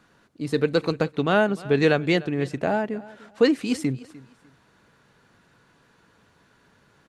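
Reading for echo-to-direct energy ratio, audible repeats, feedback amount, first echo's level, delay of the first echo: -20.0 dB, 2, 24%, -20.0 dB, 300 ms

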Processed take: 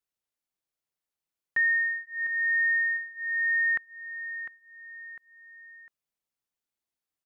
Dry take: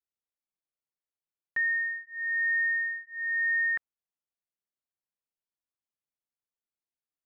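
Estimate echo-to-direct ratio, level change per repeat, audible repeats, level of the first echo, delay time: -10.0 dB, -8.0 dB, 3, -10.5 dB, 702 ms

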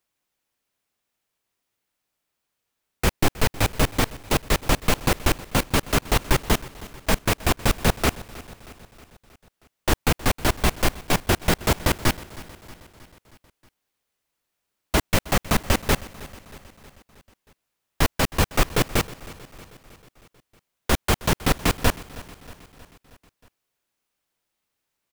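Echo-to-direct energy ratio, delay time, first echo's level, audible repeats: -17.0 dB, 316 ms, -19.0 dB, 4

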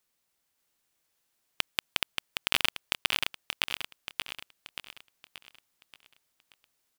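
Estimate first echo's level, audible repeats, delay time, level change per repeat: -4.0 dB, 5, 580 ms, -7.0 dB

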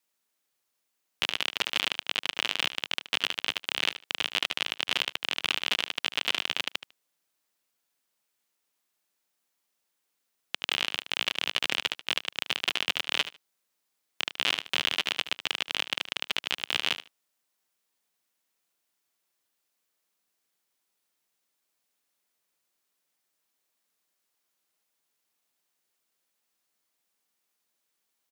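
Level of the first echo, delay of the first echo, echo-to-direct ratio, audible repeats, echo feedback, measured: -13.0 dB, 75 ms, -13.0 dB, 2, 16%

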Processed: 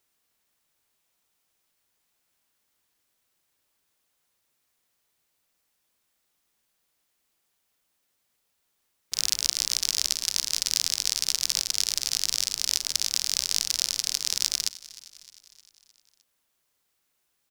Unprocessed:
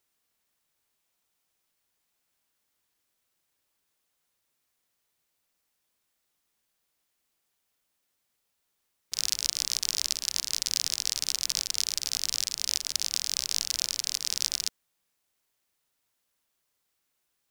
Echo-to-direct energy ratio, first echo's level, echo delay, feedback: -17.5 dB, -19.0 dB, 307 ms, 57%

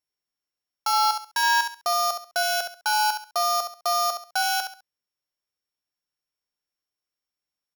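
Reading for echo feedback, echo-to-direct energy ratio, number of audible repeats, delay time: 27%, -7.0 dB, 3, 68 ms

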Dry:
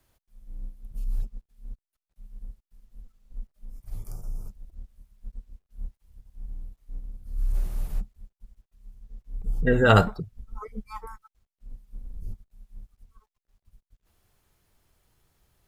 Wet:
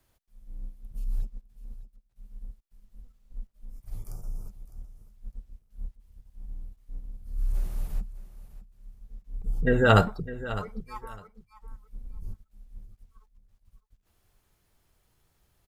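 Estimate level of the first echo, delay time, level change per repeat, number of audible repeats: -15.0 dB, 606 ms, -15.0 dB, 2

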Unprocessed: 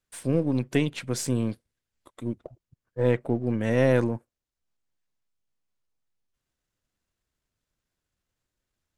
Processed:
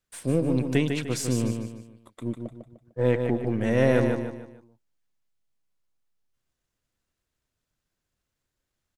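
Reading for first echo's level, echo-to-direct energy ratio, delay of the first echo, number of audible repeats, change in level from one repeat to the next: -6.0 dB, -5.5 dB, 150 ms, 4, -8.5 dB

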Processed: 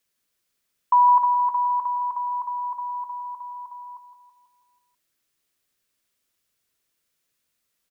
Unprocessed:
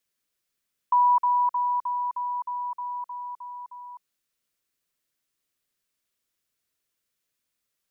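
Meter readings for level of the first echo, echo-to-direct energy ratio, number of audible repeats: -8.5 dB, -7.0 dB, 5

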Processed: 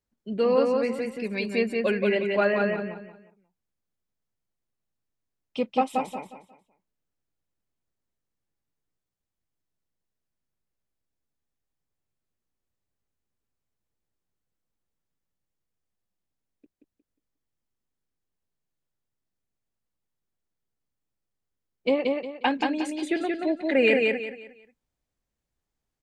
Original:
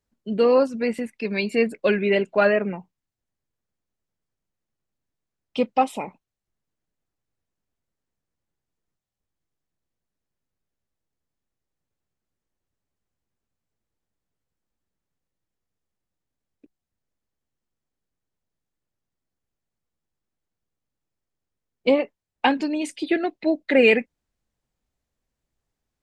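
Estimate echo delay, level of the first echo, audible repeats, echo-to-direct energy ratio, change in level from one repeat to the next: 179 ms, -3.0 dB, 4, -2.5 dB, -10.5 dB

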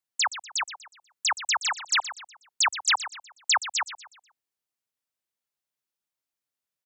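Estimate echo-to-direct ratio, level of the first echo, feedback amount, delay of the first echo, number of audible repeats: -12.5 dB, -13.0 dB, 39%, 122 ms, 3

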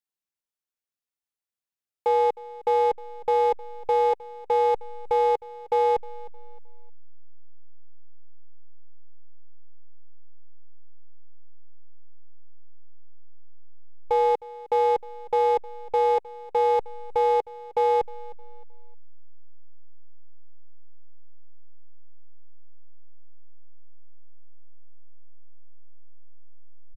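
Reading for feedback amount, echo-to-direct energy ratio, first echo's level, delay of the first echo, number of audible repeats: 31%, -19.0 dB, -19.5 dB, 310 ms, 2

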